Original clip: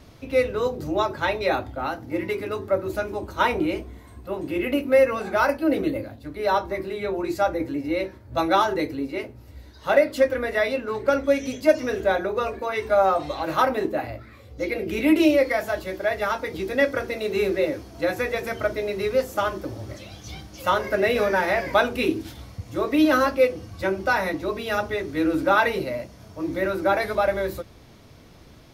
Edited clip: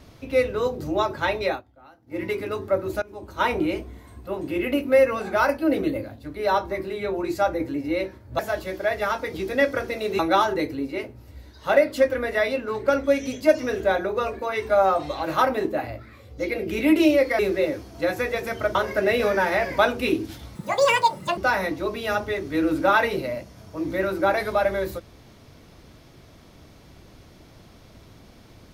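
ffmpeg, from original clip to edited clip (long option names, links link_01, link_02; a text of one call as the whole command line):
ffmpeg -i in.wav -filter_complex "[0:a]asplit=10[link_01][link_02][link_03][link_04][link_05][link_06][link_07][link_08][link_09][link_10];[link_01]atrim=end=1.62,asetpts=PTS-STARTPTS,afade=type=out:start_time=1.45:duration=0.17:silence=0.0794328[link_11];[link_02]atrim=start=1.62:end=2.06,asetpts=PTS-STARTPTS,volume=-22dB[link_12];[link_03]atrim=start=2.06:end=3.02,asetpts=PTS-STARTPTS,afade=type=in:duration=0.17:silence=0.0794328,afade=type=out:start_time=0.956:duration=0.004:curve=hsin:silence=0.11885[link_13];[link_04]atrim=start=3.02:end=8.392,asetpts=PTS-STARTPTS,afade=type=in:duration=0.52:silence=0.11885[link_14];[link_05]atrim=start=15.588:end=17.392[link_15];[link_06]atrim=start=8.388:end=15.592[link_16];[link_07]atrim=start=17.388:end=18.752[link_17];[link_08]atrim=start=20.708:end=22.514[link_18];[link_09]atrim=start=22.51:end=24,asetpts=PTS-STARTPTS,asetrate=79821,aresample=44100,atrim=end_sample=36303,asetpts=PTS-STARTPTS[link_19];[link_10]atrim=start=23.996[link_20];[link_11][link_12][link_13][link_14]concat=n=4:v=0:a=1[link_21];[link_21][link_15]acrossfade=duration=0.004:curve1=hsin:curve2=hsin[link_22];[link_22][link_16]acrossfade=duration=0.004:curve1=hsin:curve2=hsin[link_23];[link_23][link_17]acrossfade=duration=0.004:curve1=hsin:curve2=hsin[link_24];[link_24][link_18]acrossfade=duration=0.004:curve1=hsin:curve2=hsin[link_25];[link_25][link_19]acrossfade=duration=0.004:curve1=hsin:curve2=hsin[link_26];[link_26][link_20]acrossfade=duration=0.004:curve1=hsin:curve2=hsin" out.wav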